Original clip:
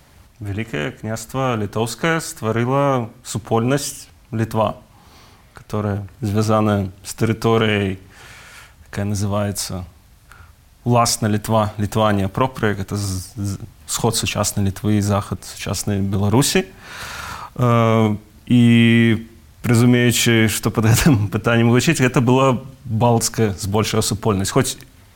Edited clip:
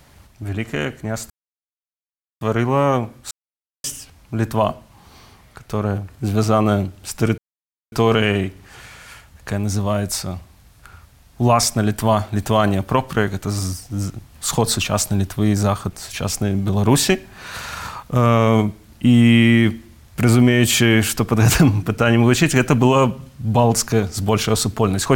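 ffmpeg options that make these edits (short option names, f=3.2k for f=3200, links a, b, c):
-filter_complex "[0:a]asplit=6[a][b][c][d][e][f];[a]atrim=end=1.3,asetpts=PTS-STARTPTS,afade=t=out:st=1.296:d=0.004:c=hsin[g];[b]atrim=start=1.3:end=2.41,asetpts=PTS-STARTPTS,volume=0[h];[c]atrim=start=2.41:end=3.31,asetpts=PTS-STARTPTS,afade=t=in:d=0.004:c=hsin,afade=t=out:st=0.896:d=0.004:c=hsin[i];[d]atrim=start=3.31:end=3.84,asetpts=PTS-STARTPTS,volume=0[j];[e]atrim=start=3.84:end=7.38,asetpts=PTS-STARTPTS,afade=t=in:d=0.004:c=hsin,afade=t=out:st=3.536:d=0.004:c=hsin,apad=pad_dur=0.54[k];[f]atrim=start=7.38,asetpts=PTS-STARTPTS,afade=t=in:d=0.004:c=hsin[l];[g][h][i][j][k][l]concat=n=6:v=0:a=1"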